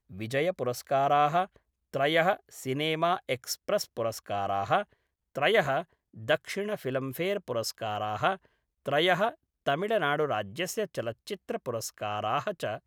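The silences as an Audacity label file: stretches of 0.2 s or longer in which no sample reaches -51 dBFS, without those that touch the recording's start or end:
1.570000	1.940000	silence
4.930000	5.350000	silence
5.840000	6.140000	silence
8.460000	8.860000	silence
9.350000	9.660000	silence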